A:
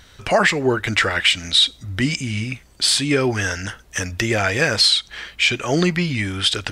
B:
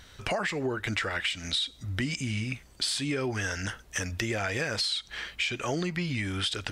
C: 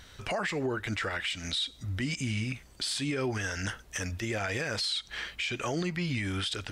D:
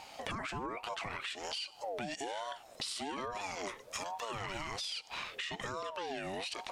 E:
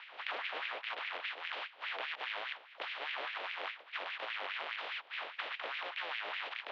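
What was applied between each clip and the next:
in parallel at -2.5 dB: peak limiter -12 dBFS, peak gain reduction 7.5 dB; on the sum: compression, threshold -18 dBFS, peak gain reduction 9.5 dB; trim -9 dB
peak limiter -22.5 dBFS, peak gain reduction 10.5 dB
compression 6:1, threshold -38 dBFS, peak gain reduction 10.5 dB; ring modulator with a swept carrier 650 Hz, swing 30%, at 1.2 Hz; trim +3.5 dB
spectral contrast reduction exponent 0.1; mistuned SSB +58 Hz 150–3300 Hz; LFO high-pass sine 4.9 Hz 500–2300 Hz; trim +3 dB

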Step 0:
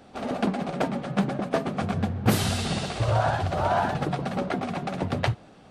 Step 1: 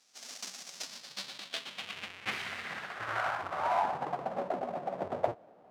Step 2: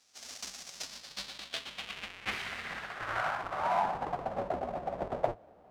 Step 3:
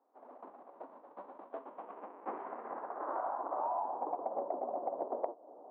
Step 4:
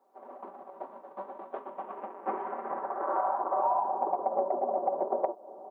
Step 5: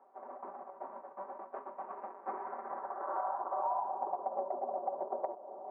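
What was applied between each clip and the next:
square wave that keeps the level; band-pass sweep 5.8 kHz -> 640 Hz, 0.72–4.51 s; trim -3.5 dB
octave divider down 2 oct, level -5 dB
elliptic band-pass 280–1000 Hz, stop band 70 dB; compression 6:1, threshold -40 dBFS, peak gain reduction 16 dB; trim +6.5 dB
comb 5.2 ms, depth 76%; trim +5.5 dB
reverse; upward compressor, threshold -30 dBFS; reverse; cabinet simulation 170–2100 Hz, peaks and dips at 210 Hz -4 dB, 310 Hz -7 dB, 480 Hz -5 dB; trim -6 dB

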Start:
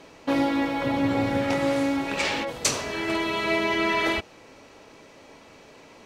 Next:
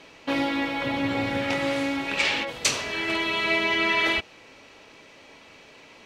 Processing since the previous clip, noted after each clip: peaking EQ 2.8 kHz +8.5 dB 1.7 oct; trim -3.5 dB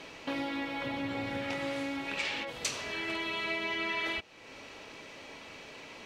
compression 2:1, threshold -44 dBFS, peak gain reduction 14 dB; trim +2 dB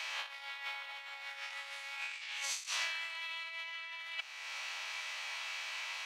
reverse spectral sustain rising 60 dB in 0.82 s; compressor with a negative ratio -38 dBFS, ratio -0.5; Bessel high-pass 1.3 kHz, order 6; trim +1.5 dB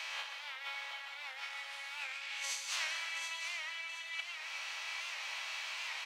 feedback delay 726 ms, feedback 36%, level -8 dB; reverberation RT60 1.6 s, pre-delay 93 ms, DRR 5.5 dB; warped record 78 rpm, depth 100 cents; trim -1.5 dB

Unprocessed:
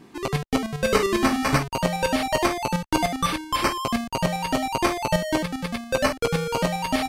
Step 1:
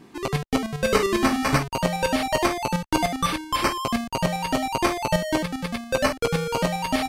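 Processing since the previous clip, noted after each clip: no audible change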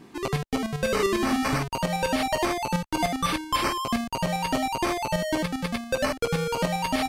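peak limiter -16 dBFS, peak gain reduction 9.5 dB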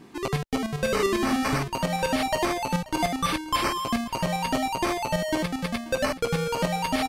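delay 534 ms -20 dB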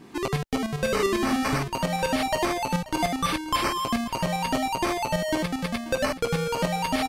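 recorder AGC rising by 24 dB/s

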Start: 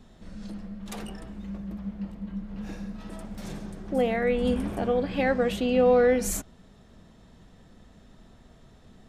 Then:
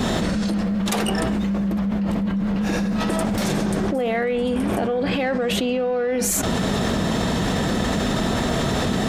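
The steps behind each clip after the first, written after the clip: high-pass 170 Hz 6 dB/octave; in parallel at -4.5 dB: saturation -23 dBFS, distortion -10 dB; on the sum: level flattener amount 100%; trim -5.5 dB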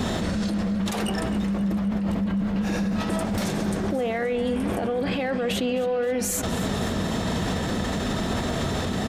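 peaking EQ 86 Hz +6 dB 0.34 oct; peak limiter -14.5 dBFS, peak gain reduction 6.5 dB; feedback delay 262 ms, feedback 58%, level -15.5 dB; trim -3 dB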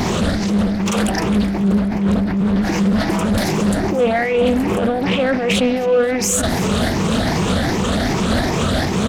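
drifting ripple filter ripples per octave 0.76, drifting +2.6 Hz, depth 12 dB; in parallel at -7 dB: saturation -30 dBFS, distortion -7 dB; on the sum: loudspeaker Doppler distortion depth 0.43 ms; trim +5.5 dB

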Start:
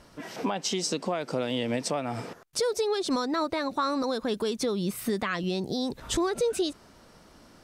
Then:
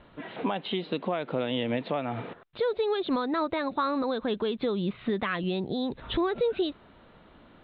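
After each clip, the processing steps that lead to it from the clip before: steep low-pass 3.9 kHz 96 dB/octave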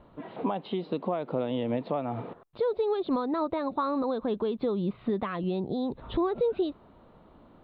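high-order bell 2.4 kHz -10 dB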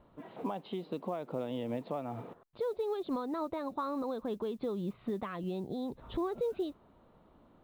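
modulation noise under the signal 34 dB; trim -7 dB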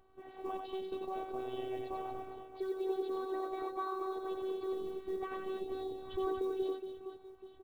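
reverse bouncing-ball echo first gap 90 ms, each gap 1.6×, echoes 5; robot voice 379 Hz; trim -1.5 dB

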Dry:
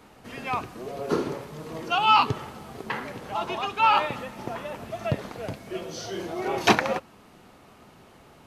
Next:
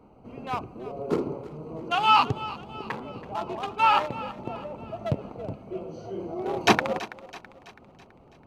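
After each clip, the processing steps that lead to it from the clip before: local Wiener filter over 25 samples; thinning echo 329 ms, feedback 51%, high-pass 400 Hz, level -16 dB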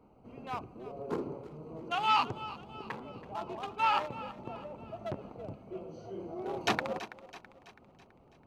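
transformer saturation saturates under 2 kHz; trim -7 dB

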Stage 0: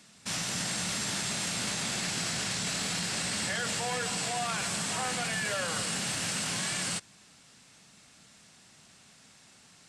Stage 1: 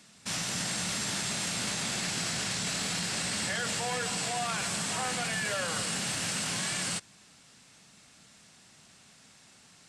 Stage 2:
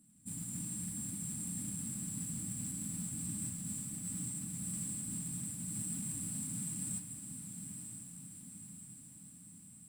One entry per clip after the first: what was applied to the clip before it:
no audible change
FFT band-reject 320–7300 Hz; modulation noise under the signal 16 dB; echo that smears into a reverb 968 ms, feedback 59%, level -7 dB; trim -4 dB

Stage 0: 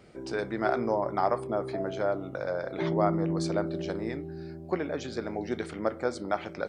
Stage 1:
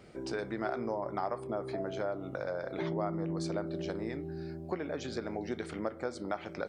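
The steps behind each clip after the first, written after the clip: compression 2.5:1, threshold -34 dBFS, peak gain reduction 10 dB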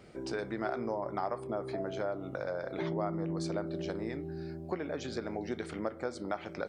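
no audible change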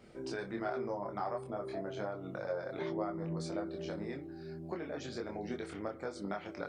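chorus voices 6, 0.31 Hz, delay 25 ms, depth 4.9 ms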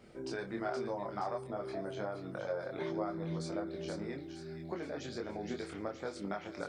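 feedback echo behind a high-pass 471 ms, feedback 50%, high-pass 2.6 kHz, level -4.5 dB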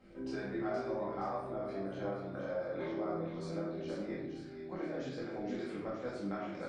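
treble shelf 5 kHz -10 dB; simulated room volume 240 m³, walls mixed, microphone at 2.1 m; trim -6.5 dB

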